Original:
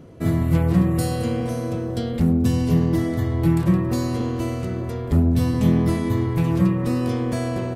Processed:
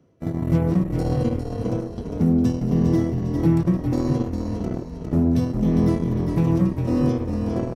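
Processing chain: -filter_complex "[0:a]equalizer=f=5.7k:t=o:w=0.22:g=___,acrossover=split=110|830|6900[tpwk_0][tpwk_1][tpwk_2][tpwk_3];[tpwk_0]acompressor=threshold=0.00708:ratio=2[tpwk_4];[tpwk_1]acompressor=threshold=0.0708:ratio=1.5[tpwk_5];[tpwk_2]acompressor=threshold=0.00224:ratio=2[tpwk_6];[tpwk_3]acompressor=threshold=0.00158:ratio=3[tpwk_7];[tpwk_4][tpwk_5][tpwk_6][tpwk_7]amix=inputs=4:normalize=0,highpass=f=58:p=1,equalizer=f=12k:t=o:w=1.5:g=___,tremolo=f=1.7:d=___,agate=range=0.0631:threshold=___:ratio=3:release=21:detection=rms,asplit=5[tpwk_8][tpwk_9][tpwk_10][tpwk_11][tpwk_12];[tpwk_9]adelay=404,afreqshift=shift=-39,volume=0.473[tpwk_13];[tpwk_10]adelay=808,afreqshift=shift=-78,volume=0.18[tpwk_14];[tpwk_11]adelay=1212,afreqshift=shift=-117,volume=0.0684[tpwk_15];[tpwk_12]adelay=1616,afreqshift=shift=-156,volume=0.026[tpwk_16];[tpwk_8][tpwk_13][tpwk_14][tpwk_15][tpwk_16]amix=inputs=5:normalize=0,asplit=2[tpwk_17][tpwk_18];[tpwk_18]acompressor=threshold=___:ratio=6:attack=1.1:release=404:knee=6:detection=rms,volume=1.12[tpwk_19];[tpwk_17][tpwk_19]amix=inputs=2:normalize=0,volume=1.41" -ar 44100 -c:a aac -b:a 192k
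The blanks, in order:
10, -6, 0.42, 0.0501, 0.0251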